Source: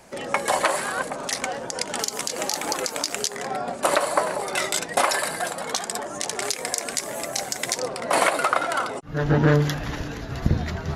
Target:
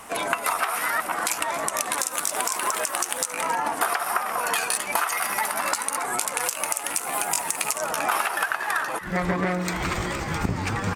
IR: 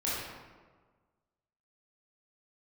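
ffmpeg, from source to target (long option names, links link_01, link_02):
-filter_complex "[0:a]equalizer=frequency=1000:width_type=o:width=1:gain=9,equalizer=frequency=2000:width_type=o:width=1:gain=3,equalizer=frequency=8000:width_type=o:width=1:gain=9,acompressor=threshold=-23dB:ratio=8,asetrate=53981,aresample=44100,atempo=0.816958,asplit=2[link_01][link_02];[link_02]asplit=4[link_03][link_04][link_05][link_06];[link_03]adelay=273,afreqshift=140,volume=-14.5dB[link_07];[link_04]adelay=546,afreqshift=280,volume=-20.9dB[link_08];[link_05]adelay=819,afreqshift=420,volume=-27.3dB[link_09];[link_06]adelay=1092,afreqshift=560,volume=-33.6dB[link_10];[link_07][link_08][link_09][link_10]amix=inputs=4:normalize=0[link_11];[link_01][link_11]amix=inputs=2:normalize=0,volume=2dB"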